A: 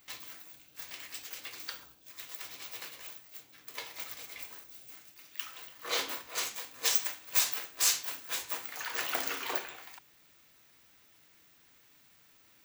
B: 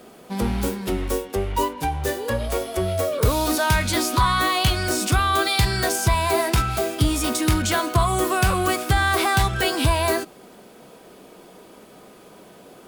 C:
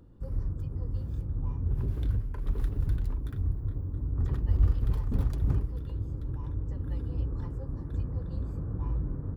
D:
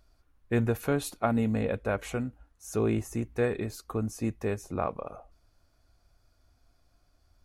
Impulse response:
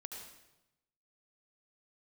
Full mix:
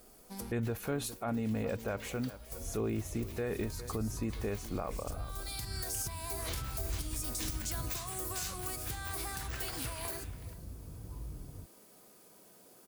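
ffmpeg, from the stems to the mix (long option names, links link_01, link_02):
-filter_complex "[0:a]adelay=550,volume=-11dB[link_01];[1:a]acompressor=threshold=-24dB:ratio=5,aexciter=amount=4.2:drive=3.4:freq=4600,volume=-16.5dB,asplit=2[link_02][link_03];[link_03]volume=-20.5dB[link_04];[2:a]adelay=2300,volume=-13dB[link_05];[3:a]volume=-2dB,asplit=3[link_06][link_07][link_08];[link_07]volume=-20.5dB[link_09];[link_08]apad=whole_len=567719[link_10];[link_02][link_10]sidechaincompress=threshold=-44dB:ratio=8:attack=24:release=570[link_11];[link_04][link_09]amix=inputs=2:normalize=0,aecho=0:1:408:1[link_12];[link_01][link_11][link_05][link_06][link_12]amix=inputs=5:normalize=0,alimiter=level_in=2dB:limit=-24dB:level=0:latency=1:release=44,volume=-2dB"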